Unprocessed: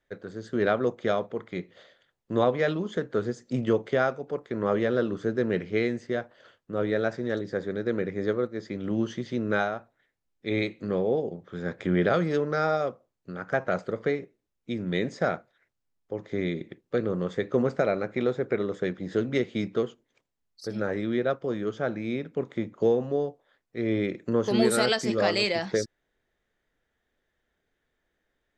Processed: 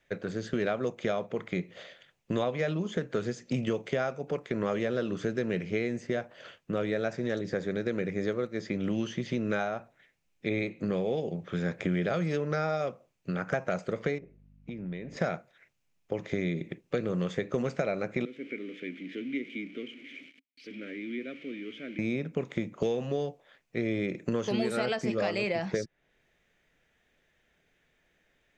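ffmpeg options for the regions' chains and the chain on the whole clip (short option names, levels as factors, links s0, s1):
-filter_complex "[0:a]asettb=1/sr,asplit=3[s0][s1][s2];[s0]atrim=end=14.184[s3];[s1]atrim=start=14.18:end=15.17,asetpts=PTS-STARTPTS,afade=t=in:d=0.004:c=qsin,afade=t=out:st=0.986:d=0.004:c=qsin,lowpass=f=1400:p=1,acompressor=threshold=0.00794:ratio=8:attack=3.2:release=140:knee=1:detection=peak,aeval=exprs='val(0)+0.000794*(sin(2*PI*50*n/s)+sin(2*PI*2*50*n/s)/2+sin(2*PI*3*50*n/s)/3+sin(2*PI*4*50*n/s)/4+sin(2*PI*5*50*n/s)/5)':c=same[s4];[s2]atrim=start=15.166[s5];[s3][s4]acrossfade=d=0.004:c1=hsin:c2=qsin[s6];[s6][s5]acrossfade=d=0.004:c1=qsin:c2=hsin,asettb=1/sr,asplit=3[s7][s8][s9];[s7]atrim=end=18.254[s10];[s8]atrim=start=18.25:end=21.99,asetpts=PTS-STARTPTS,afade=t=in:d=0.004:c=qsin,afade=t=out:st=3.736:d=0.004:c=qsin,aeval=exprs='val(0)+0.5*0.0178*sgn(val(0))':c=same,asplit=3[s11][s12][s13];[s11]bandpass=f=270:t=q:w=8,volume=1[s14];[s12]bandpass=f=2290:t=q:w=8,volume=0.501[s15];[s13]bandpass=f=3010:t=q:w=8,volume=0.355[s16];[s14][s15][s16]amix=inputs=3:normalize=0,bass=f=250:g=-12,treble=f=4000:g=-7[s17];[s9]atrim=start=21.986[s18];[s10][s17]acrossfade=d=0.004:c1=hsin:c2=qsin[s19];[s19][s18]acrossfade=d=0.004:c1=qsin:c2=hsin,equalizer=f=160:t=o:w=0.67:g=7,equalizer=f=630:t=o:w=0.67:g=3,equalizer=f=2500:t=o:w=0.67:g=11,equalizer=f=6300:t=o:w=0.67:g=5,acrossover=split=1700|5200[s20][s21][s22];[s20]acompressor=threshold=0.0251:ratio=4[s23];[s21]acompressor=threshold=0.00316:ratio=4[s24];[s22]acompressor=threshold=0.00126:ratio=4[s25];[s23][s24][s25]amix=inputs=3:normalize=0,volume=1.5"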